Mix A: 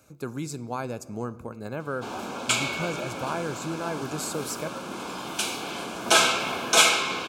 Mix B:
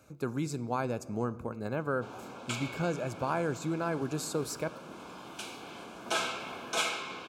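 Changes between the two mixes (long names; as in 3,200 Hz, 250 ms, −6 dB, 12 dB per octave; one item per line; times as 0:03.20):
background −11.0 dB
master: add high-shelf EQ 4,400 Hz −7 dB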